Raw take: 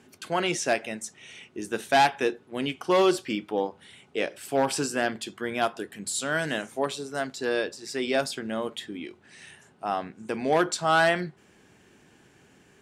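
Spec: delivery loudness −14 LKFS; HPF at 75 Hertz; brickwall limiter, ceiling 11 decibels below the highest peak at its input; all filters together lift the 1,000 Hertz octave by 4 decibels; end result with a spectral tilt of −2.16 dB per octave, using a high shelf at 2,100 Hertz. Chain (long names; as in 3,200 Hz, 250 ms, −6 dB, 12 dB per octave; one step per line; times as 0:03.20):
high-pass filter 75 Hz
parametric band 1,000 Hz +4 dB
high-shelf EQ 2,100 Hz +7 dB
level +13 dB
brickwall limiter 0 dBFS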